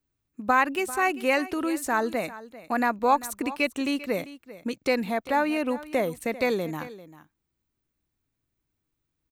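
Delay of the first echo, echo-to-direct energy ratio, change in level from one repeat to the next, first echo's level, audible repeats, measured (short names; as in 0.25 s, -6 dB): 0.394 s, -16.5 dB, no steady repeat, -16.5 dB, 1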